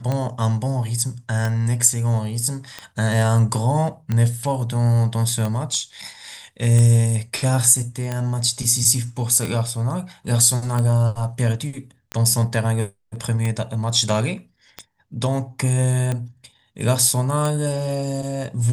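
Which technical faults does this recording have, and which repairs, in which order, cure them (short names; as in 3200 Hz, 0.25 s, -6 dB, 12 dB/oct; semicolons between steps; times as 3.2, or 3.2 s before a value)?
tick 45 rpm -12 dBFS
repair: de-click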